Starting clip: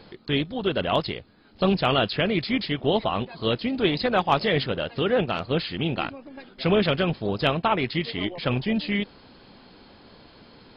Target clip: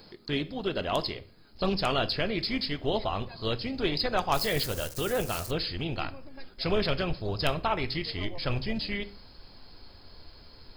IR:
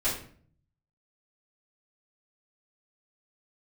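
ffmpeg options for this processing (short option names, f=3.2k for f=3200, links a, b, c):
-filter_complex "[0:a]asubboost=boost=7.5:cutoff=70,asettb=1/sr,asplit=3[a][b][c];[a]atrim=end=4.344[d];[b]atrim=start=4.34:end=5.51,asetpts=PTS-STARTPTS,afade=t=in:d=0.004:c=qsin,afade=t=out:st=1.166:d=0.004:c=qsin,aeval=exprs='val(0)*gte(abs(val(0)),0.0119)':c=same[e];[c]atrim=start=5.506[f];[d][e]acrossfade=d=0.004:c1=hsin:c2=qsin[g];[g][f]acrossfade=d=0.004:c1=qsin:c2=hsin,aexciter=amount=4.5:drive=8.2:freq=4.8k,asplit=2[h][i];[1:a]atrim=start_sample=2205[j];[i][j]afir=irnorm=-1:irlink=0,volume=-20.5dB[k];[h][k]amix=inputs=2:normalize=0,volume=-6dB"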